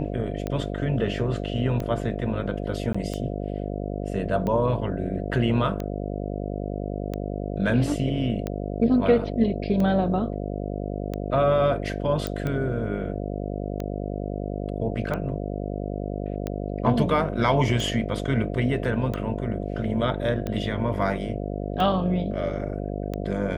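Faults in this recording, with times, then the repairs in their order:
buzz 50 Hz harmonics 14 -30 dBFS
tick 45 rpm -17 dBFS
2.93–2.94 gap 15 ms
12.27 pop -14 dBFS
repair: de-click; de-hum 50 Hz, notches 14; interpolate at 2.93, 15 ms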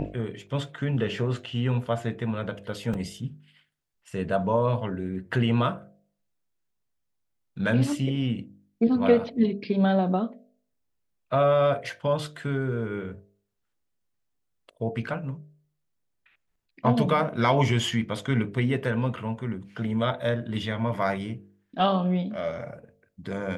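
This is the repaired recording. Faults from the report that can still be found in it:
none

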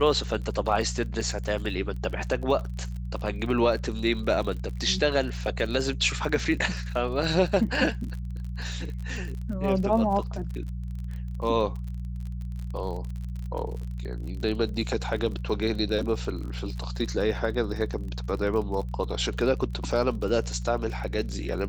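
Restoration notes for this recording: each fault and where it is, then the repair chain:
crackle 42/s -34 dBFS
hum 60 Hz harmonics 3 -33 dBFS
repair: de-click; de-hum 60 Hz, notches 3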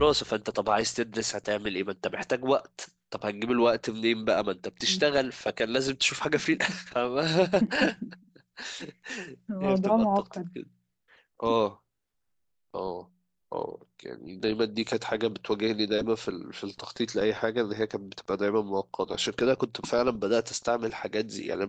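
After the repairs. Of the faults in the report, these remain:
none

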